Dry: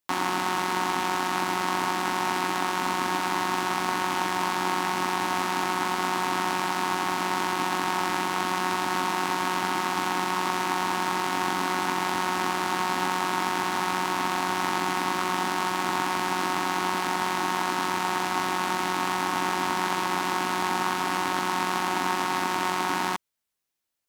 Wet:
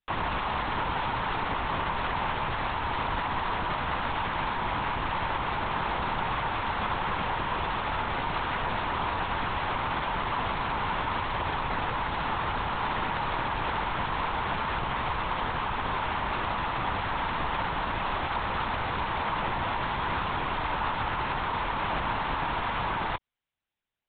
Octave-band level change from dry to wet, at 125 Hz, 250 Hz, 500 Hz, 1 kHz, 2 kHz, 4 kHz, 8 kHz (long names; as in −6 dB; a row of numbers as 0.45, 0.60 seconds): +4.0 dB, −6.5 dB, −3.0 dB, −3.0 dB, −3.0 dB, −5.0 dB, below −40 dB